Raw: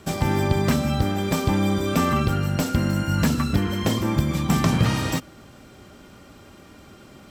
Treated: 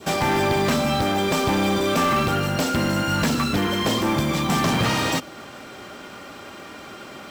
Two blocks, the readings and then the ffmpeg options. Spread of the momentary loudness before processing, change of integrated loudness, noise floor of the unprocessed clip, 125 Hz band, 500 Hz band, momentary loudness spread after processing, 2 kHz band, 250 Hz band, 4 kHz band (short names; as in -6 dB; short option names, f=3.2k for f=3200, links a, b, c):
3 LU, +1.0 dB, -48 dBFS, -4.0 dB, +4.0 dB, 18 LU, +5.5 dB, -0.5 dB, +6.0 dB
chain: -filter_complex "[0:a]adynamicequalizer=threshold=0.00891:dfrequency=1600:dqfactor=0.99:tfrequency=1600:tqfactor=0.99:attack=5:release=100:ratio=0.375:range=2:mode=cutabove:tftype=bell,asplit=2[a][b];[b]highpass=f=720:p=1,volume=24dB,asoftclip=type=tanh:threshold=-7dB[c];[a][c]amix=inputs=2:normalize=0,lowpass=f=3.4k:p=1,volume=-6dB,acrusher=bits=5:mode=log:mix=0:aa=0.000001,volume=-4.5dB"